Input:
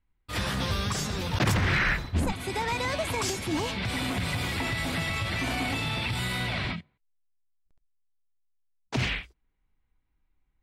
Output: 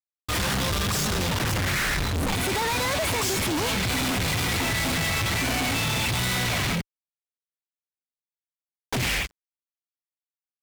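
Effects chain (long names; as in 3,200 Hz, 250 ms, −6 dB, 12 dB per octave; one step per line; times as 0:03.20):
fuzz pedal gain 51 dB, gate −54 dBFS
power curve on the samples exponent 2
level −7.5 dB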